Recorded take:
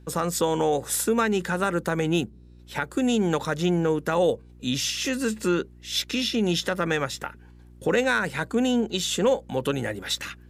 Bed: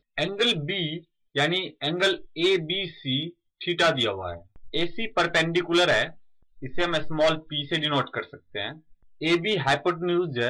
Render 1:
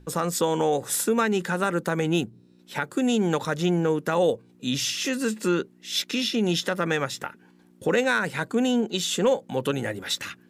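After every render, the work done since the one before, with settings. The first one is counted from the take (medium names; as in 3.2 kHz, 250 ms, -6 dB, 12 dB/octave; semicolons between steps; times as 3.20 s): de-hum 60 Hz, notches 2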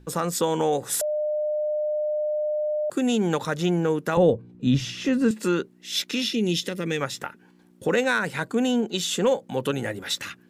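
1.01–2.90 s: bleep 604 Hz -22.5 dBFS; 4.17–5.31 s: RIAA curve playback; 6.33–7.01 s: high-order bell 990 Hz -12 dB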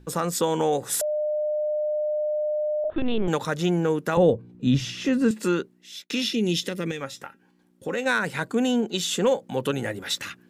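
2.84–3.28 s: LPC vocoder at 8 kHz pitch kept; 5.52–6.10 s: fade out; 6.91–8.06 s: feedback comb 270 Hz, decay 0.17 s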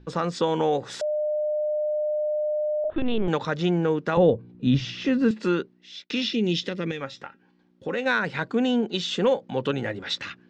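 low-pass 5 kHz 24 dB/octave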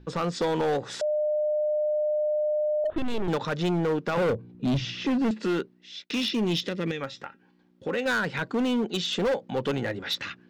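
hard clipper -21.5 dBFS, distortion -10 dB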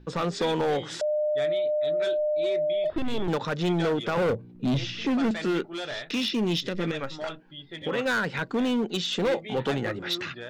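add bed -14 dB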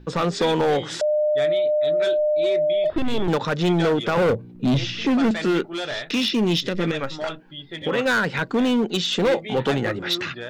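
trim +5.5 dB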